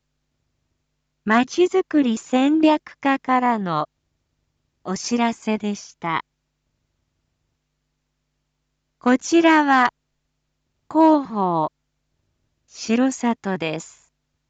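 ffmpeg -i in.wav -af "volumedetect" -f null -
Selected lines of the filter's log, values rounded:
mean_volume: -22.3 dB
max_volume: -6.3 dB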